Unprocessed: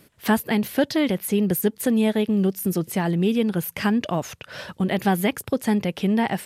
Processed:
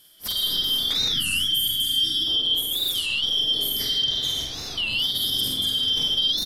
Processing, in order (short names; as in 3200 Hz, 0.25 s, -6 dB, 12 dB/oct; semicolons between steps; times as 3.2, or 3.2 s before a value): four-band scrambler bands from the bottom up 3412; bell 12000 Hz +9.5 dB 1.5 oct; digital reverb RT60 3.7 s, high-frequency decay 0.3×, pre-delay 35 ms, DRR -5 dB; spectral gain 1.11–2.27, 350–1300 Hz -18 dB; on a send: flutter echo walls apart 11.7 m, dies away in 0.27 s; on the sum: limiter -12.5 dBFS, peak gain reduction 10.5 dB; low shelf 260 Hz +6.5 dB; doubler 46 ms -2.5 dB; record warp 33 1/3 rpm, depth 250 cents; gain -5.5 dB